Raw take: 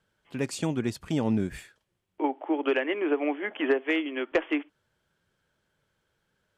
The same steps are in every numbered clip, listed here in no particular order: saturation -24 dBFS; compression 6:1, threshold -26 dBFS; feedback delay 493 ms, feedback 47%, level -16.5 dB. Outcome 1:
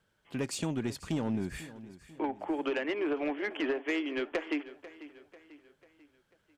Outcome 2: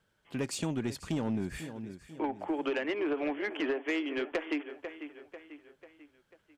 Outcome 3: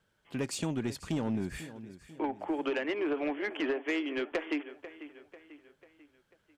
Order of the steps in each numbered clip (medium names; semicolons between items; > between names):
compression > saturation > feedback delay; feedback delay > compression > saturation; compression > feedback delay > saturation